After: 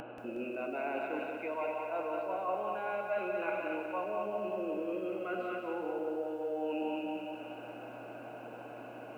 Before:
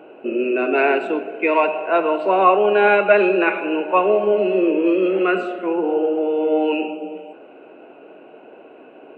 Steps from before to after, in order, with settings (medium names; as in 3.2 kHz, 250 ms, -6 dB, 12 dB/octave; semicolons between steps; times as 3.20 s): low-pass 2.5 kHz 6 dB/octave; peaking EQ 400 Hz -14 dB 0.36 oct; on a send: thinning echo 241 ms, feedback 47%, high-pass 1.1 kHz, level -6 dB; on the sum: dynamic bell 510 Hz, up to +6 dB, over -30 dBFS, Q 0.84; band-stop 1.8 kHz, Q 8.7; feedback comb 120 Hz, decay 1.6 s, mix 60%; reverse; compression 5:1, threshold -36 dBFS, peak gain reduction 20.5 dB; reverse; mains buzz 120 Hz, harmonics 14, -63 dBFS -2 dB/octave; upward compressor, threshold -39 dBFS; bit-crushed delay 182 ms, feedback 55%, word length 11-bit, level -6 dB